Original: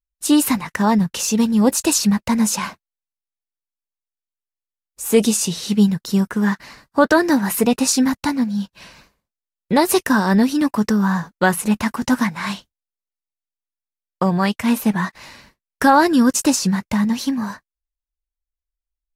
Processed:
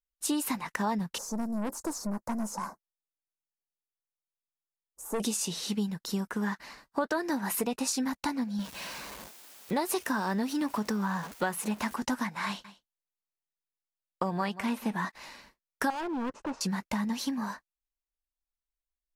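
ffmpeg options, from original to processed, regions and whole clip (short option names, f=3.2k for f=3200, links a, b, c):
-filter_complex "[0:a]asettb=1/sr,asplit=3[a][b][c];[a]atrim=end=1.184[d];[b]atrim=start=1.18:end=5.2,asetpts=PTS-STARTPTS,afade=t=in:d=0.004:c=qsin,afade=t=out:st=4.016:d=0.004:c=qsin,acrossover=split=4900[e][f];[f]acompressor=threshold=-32dB:ratio=4:attack=1:release=60[g];[e][g]amix=inputs=2:normalize=0,asuperstop=centerf=2900:order=4:qfactor=0.55,aeval=exprs='(tanh(7.94*val(0)+0.35)-tanh(0.35))/7.94':c=same[h];[c]atrim=start=5.196[i];[d][h]acrossfade=d=0.004:c1=hsin:c2=qsin[j];[j][i]acrossfade=d=0.004:c1=qsin:c2=hsin,asettb=1/sr,asplit=3[k][l][m];[k]atrim=end=8.594[n];[l]atrim=start=8.59:end=11.94,asetpts=PTS-STARTPTS,afade=t=in:d=0.004:c=qsin,afade=t=out:st=3.346:d=0.004:c=qsin,aeval=exprs='val(0)+0.5*0.0316*sgn(val(0))':c=same,highpass=64[o];[m]atrim=start=11.936[p];[n][o]acrossfade=d=0.004:c1=hsin:c2=qsin[q];[q][p]acrossfade=d=0.004:c1=qsin:c2=hsin,asettb=1/sr,asplit=3[r][s][t];[r]atrim=end=12.464[u];[s]atrim=start=12.46:end=15.05,asetpts=PTS-STARTPTS,afade=t=in:d=0.004:c=qsin,afade=t=out:st=2.586:d=0.004:c=qsin,acrossover=split=4500[v][w];[w]acompressor=threshold=-38dB:ratio=4:attack=1:release=60[x];[v][x]amix=inputs=2:normalize=0,aecho=1:1:183:0.141,atrim=end_sample=114219[y];[t]atrim=start=15.046[z];[u][y]acrossfade=d=0.004:c1=hsin:c2=qsin[aa];[aa][z]acrossfade=d=0.004:c1=qsin:c2=hsin,asettb=1/sr,asplit=3[ab][ac][ad];[ab]atrim=end=15.904[ae];[ac]atrim=start=15.9:end=16.61,asetpts=PTS-STARTPTS,afade=t=in:d=0.004:c=qsin,afade=t=out:st=0.706:d=0.004:c=qsin,lowpass=1.1k,equalizer=f=240:t=o:w=0.88:g=-7,volume=21.5dB,asoftclip=hard,volume=-21.5dB[af];[ad]atrim=start=16.606[ag];[ae][af]acrossfade=d=0.004:c1=hsin:c2=qsin[ah];[ah][ag]acrossfade=d=0.004:c1=qsin:c2=hsin,equalizer=f=100:t=o:w=1.2:g=-12.5,acompressor=threshold=-21dB:ratio=4,equalizer=f=870:t=o:w=0.77:g=2.5,volume=-7dB"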